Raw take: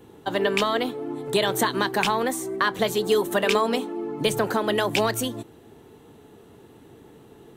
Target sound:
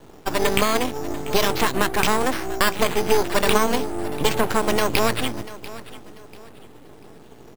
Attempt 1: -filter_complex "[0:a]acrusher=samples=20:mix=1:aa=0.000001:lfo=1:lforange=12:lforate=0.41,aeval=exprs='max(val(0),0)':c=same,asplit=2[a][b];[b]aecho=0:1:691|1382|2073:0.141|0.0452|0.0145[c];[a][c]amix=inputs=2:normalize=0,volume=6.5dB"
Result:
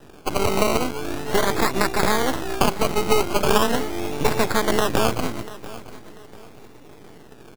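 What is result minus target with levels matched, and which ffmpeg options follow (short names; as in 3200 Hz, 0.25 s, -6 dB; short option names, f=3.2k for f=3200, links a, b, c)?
decimation with a swept rate: distortion +9 dB
-filter_complex "[0:a]acrusher=samples=6:mix=1:aa=0.000001:lfo=1:lforange=3.6:lforate=0.41,aeval=exprs='max(val(0),0)':c=same,asplit=2[a][b];[b]aecho=0:1:691|1382|2073:0.141|0.0452|0.0145[c];[a][c]amix=inputs=2:normalize=0,volume=6.5dB"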